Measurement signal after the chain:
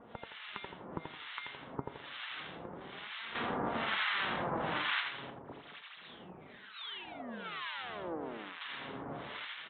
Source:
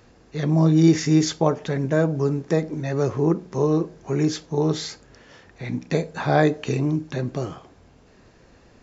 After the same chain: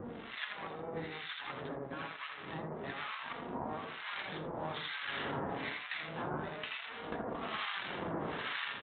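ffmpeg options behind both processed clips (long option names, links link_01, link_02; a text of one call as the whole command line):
ffmpeg -i in.wav -filter_complex "[0:a]aeval=exprs='val(0)+0.5*0.0376*sgn(val(0))':channel_layout=same,bandreject=frequency=2500:width=11,dynaudnorm=framelen=120:gausssize=5:maxgain=13.5dB,afftfilt=real='re*lt(hypot(re,im),0.447)':imag='im*lt(hypot(re,im),0.447)':win_size=1024:overlap=0.75,asplit=2[link_01][link_02];[link_02]aecho=0:1:83|166|249|332|415:0.562|0.214|0.0812|0.0309|0.0117[link_03];[link_01][link_03]amix=inputs=2:normalize=0,acrossover=split=810|2400[link_04][link_05][link_06];[link_04]acompressor=threshold=-37dB:ratio=4[link_07];[link_06]acompressor=threshold=-23dB:ratio=4[link_08];[link_07][link_05][link_08]amix=inputs=3:normalize=0,aresample=8000,aeval=exprs='max(val(0),0)':channel_layout=same,aresample=44100,highpass=210,flanger=delay=4.2:depth=3.1:regen=62:speed=0.28:shape=sinusoidal,highshelf=frequency=2400:gain=5.5,acrossover=split=1100[link_09][link_10];[link_09]aeval=exprs='val(0)*(1-1/2+1/2*cos(2*PI*1.1*n/s))':channel_layout=same[link_11];[link_10]aeval=exprs='val(0)*(1-1/2-1/2*cos(2*PI*1.1*n/s))':channel_layout=same[link_12];[link_11][link_12]amix=inputs=2:normalize=0,aemphasis=mode=reproduction:type=riaa,volume=1dB" out.wav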